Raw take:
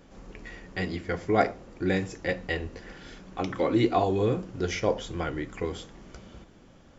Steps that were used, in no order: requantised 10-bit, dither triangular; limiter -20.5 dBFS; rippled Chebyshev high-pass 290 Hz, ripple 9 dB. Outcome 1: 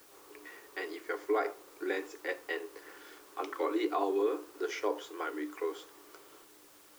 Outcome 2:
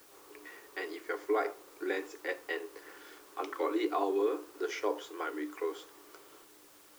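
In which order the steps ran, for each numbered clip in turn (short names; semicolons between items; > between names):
rippled Chebyshev high-pass > requantised > limiter; rippled Chebyshev high-pass > limiter > requantised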